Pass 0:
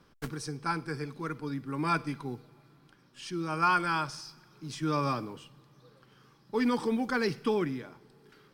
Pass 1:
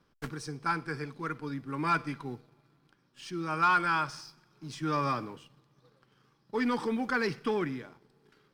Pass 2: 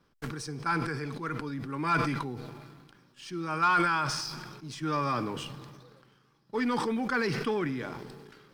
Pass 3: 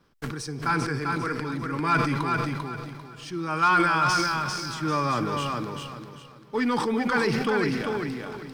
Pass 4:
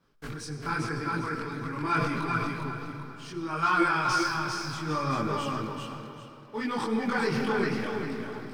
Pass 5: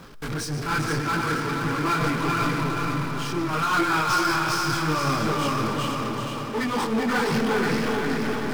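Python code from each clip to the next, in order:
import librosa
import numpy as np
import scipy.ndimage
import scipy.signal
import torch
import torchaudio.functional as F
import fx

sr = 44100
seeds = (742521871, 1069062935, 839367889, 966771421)

y1 = fx.high_shelf(x, sr, hz=12000.0, db=-8.0)
y1 = fx.leveller(y1, sr, passes=1)
y1 = fx.dynamic_eq(y1, sr, hz=1600.0, q=0.8, threshold_db=-42.0, ratio=4.0, max_db=5)
y1 = F.gain(torch.from_numpy(y1), -5.5).numpy()
y2 = fx.sustainer(y1, sr, db_per_s=34.0)
y3 = fx.echo_feedback(y2, sr, ms=395, feedback_pct=29, wet_db=-4.0)
y3 = F.gain(torch.from_numpy(y3), 4.0).numpy()
y4 = fx.chorus_voices(y3, sr, voices=6, hz=0.78, base_ms=22, depth_ms=4.9, mix_pct=55)
y4 = fx.rev_freeverb(y4, sr, rt60_s=3.4, hf_ratio=0.5, predelay_ms=50, drr_db=8.0)
y4 = F.gain(torch.from_numpy(y4), -1.5).numpy()
y5 = y4 * (1.0 - 0.61 / 2.0 + 0.61 / 2.0 * np.cos(2.0 * np.pi * 5.3 * (np.arange(len(y4)) / sr)))
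y5 = fx.power_curve(y5, sr, exponent=0.5)
y5 = fx.echo_feedback(y5, sr, ms=476, feedback_pct=39, wet_db=-5.5)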